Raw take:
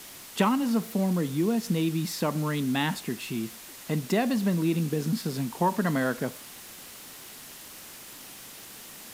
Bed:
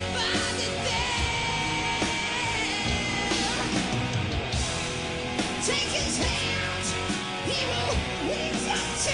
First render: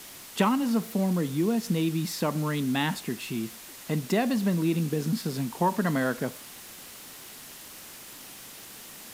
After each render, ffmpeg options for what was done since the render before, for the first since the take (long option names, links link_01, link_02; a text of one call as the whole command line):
ffmpeg -i in.wav -af anull out.wav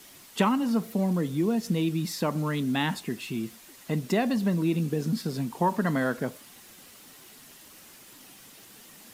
ffmpeg -i in.wav -af "afftdn=noise_reduction=7:noise_floor=-45" out.wav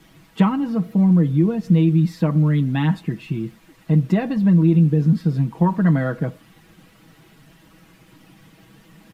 ffmpeg -i in.wav -af "bass=frequency=250:gain=12,treble=frequency=4000:gain=-14,aecho=1:1:6.2:0.65" out.wav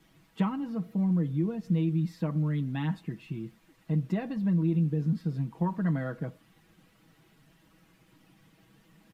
ffmpeg -i in.wav -af "volume=-11.5dB" out.wav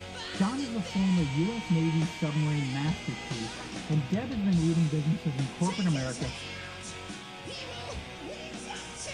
ffmpeg -i in.wav -i bed.wav -filter_complex "[1:a]volume=-12dB[link_01];[0:a][link_01]amix=inputs=2:normalize=0" out.wav